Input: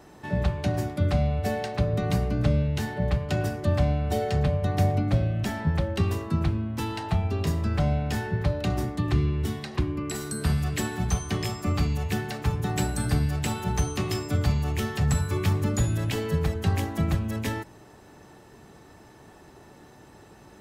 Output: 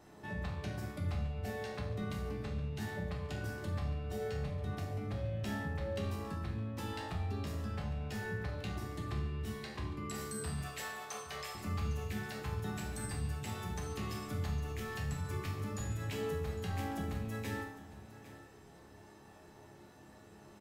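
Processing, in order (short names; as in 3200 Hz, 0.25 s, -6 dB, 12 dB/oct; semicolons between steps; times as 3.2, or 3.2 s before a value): 10.61–11.55 steep high-pass 450 Hz 48 dB/oct; limiter -23 dBFS, peak gain reduction 11.5 dB; resonator bank C#2 major, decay 0.59 s; echo 0.807 s -15.5 dB; gain +8 dB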